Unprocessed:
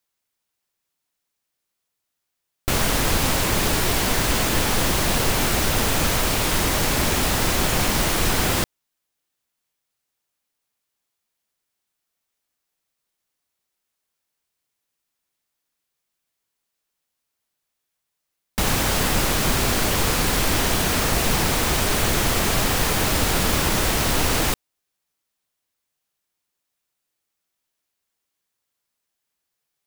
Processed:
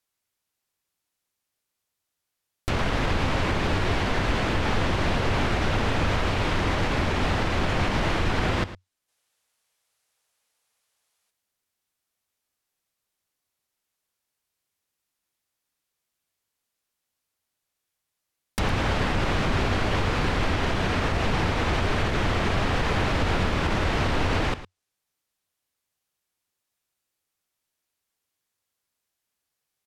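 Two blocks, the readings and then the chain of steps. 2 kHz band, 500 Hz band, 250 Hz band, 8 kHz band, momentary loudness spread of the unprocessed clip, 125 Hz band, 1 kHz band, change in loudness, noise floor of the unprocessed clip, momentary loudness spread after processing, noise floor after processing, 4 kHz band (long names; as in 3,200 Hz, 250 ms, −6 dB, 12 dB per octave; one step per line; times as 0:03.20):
−3.0 dB, −2.5 dB, −2.5 dB, −19.5 dB, 1 LU, −0.5 dB, −2.5 dB, −5.0 dB, −80 dBFS, 1 LU, −83 dBFS, −8.0 dB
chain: treble cut that deepens with the level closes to 2,900 Hz, closed at −19.5 dBFS
gain on a spectral selection 0:09.09–0:11.30, 430–12,000 Hz +8 dB
parametric band 92 Hz +6.5 dB 0.3 octaves
brickwall limiter −13 dBFS, peak gain reduction 4.5 dB
single-tap delay 109 ms −14.5 dB
level −1.5 dB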